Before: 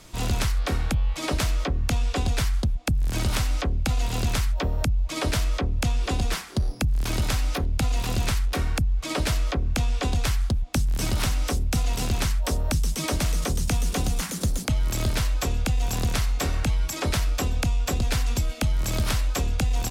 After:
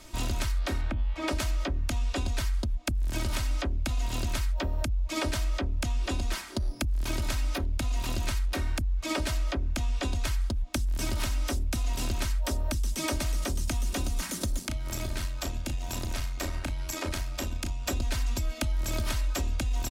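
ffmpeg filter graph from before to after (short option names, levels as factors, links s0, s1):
-filter_complex "[0:a]asettb=1/sr,asplit=3[s0][s1][s2];[s0]atrim=end=0.814[s3];[s1]atrim=start=0.81:end=1.28,asetpts=PTS-STARTPTS,afade=t=in:d=0.004:c=qsin,afade=t=out:st=0.466:d=0.004:c=qsin,bandreject=f=60:t=h:w=6,bandreject=f=120:t=h:w=6,bandreject=f=180:t=h:w=6,bandreject=f=240:t=h:w=6,bandreject=f=300:t=h:w=6,bandreject=f=360:t=h:w=6,bandreject=f=420:t=h:w=6,acrossover=split=2800[s4][s5];[s5]acompressor=threshold=0.00447:ratio=4:attack=1:release=60[s6];[s4][s6]amix=inputs=2:normalize=0,highshelf=f=9700:g=-11.5[s7];[s2]atrim=start=1.276[s8];[s3][s7]acrossfade=d=0.004:c1=hsin:c2=qsin[s9];[s9][s8]acrossfade=d=0.004:c1=qsin:c2=hsin,asettb=1/sr,asplit=3[s10][s11][s12];[s10]atrim=end=14.594[s13];[s11]atrim=start=14.59:end=17.87,asetpts=PTS-STARTPTS,afade=t=in:d=0.004:c=qsin,afade=t=out:st=3.276:d=0.004:c=qsin,tremolo=f=88:d=0.667,acompressor=threshold=0.0501:ratio=3:attack=3.2:release=140:knee=1:detection=peak,asplit=2[s14][s15];[s15]adelay=35,volume=0.447[s16];[s14][s16]amix=inputs=2:normalize=0,atrim=end_sample=144648[s17];[s12]atrim=start=17.866[s18];[s13][s17]acrossfade=d=0.004:c1=hsin:c2=qsin[s19];[s19][s18]acrossfade=d=0.004:c1=qsin:c2=hsin,acompressor=threshold=0.0562:ratio=6,aecho=1:1:3.2:0.59,volume=0.75"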